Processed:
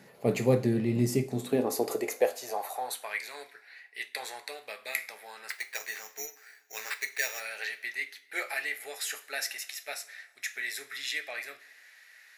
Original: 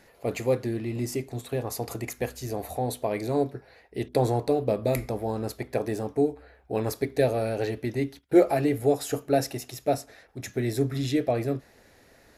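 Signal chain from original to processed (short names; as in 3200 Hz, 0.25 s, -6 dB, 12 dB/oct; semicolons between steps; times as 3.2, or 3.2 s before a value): 5.5–7.4 sample-rate reducer 6300 Hz, jitter 0%; two-slope reverb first 0.29 s, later 1.5 s, from -18 dB, DRR 8 dB; high-pass sweep 150 Hz -> 1900 Hz, 1.21–3.22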